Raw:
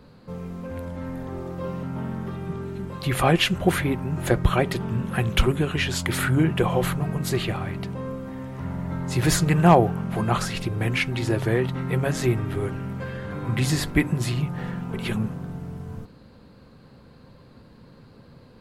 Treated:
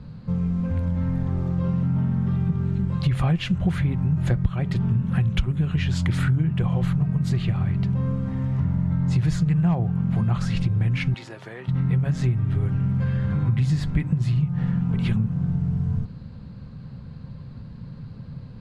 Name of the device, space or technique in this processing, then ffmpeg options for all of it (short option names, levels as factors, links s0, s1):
jukebox: -filter_complex "[0:a]lowpass=6400,lowshelf=f=230:t=q:w=1.5:g=12,acompressor=threshold=0.112:ratio=6,asettb=1/sr,asplit=3[s0][s1][s2];[s0]atrim=end=11.144[s3];[s1]atrim=start=11.14:end=11.68,asetpts=PTS-STARTPTS,afade=t=in:d=0.004:c=qsin,afade=t=out:st=0.536:d=0.004:c=qsin,highpass=490[s4];[s2]atrim=start=11.676[s5];[s3][s4]acrossfade=d=0.004:c1=hsin:c2=qsin[s6];[s6][s5]acrossfade=d=0.004:c1=qsin:c2=hsin"